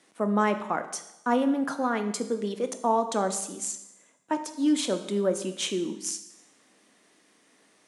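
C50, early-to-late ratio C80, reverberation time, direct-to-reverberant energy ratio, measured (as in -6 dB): 11.0 dB, 13.0 dB, 0.90 s, 8.0 dB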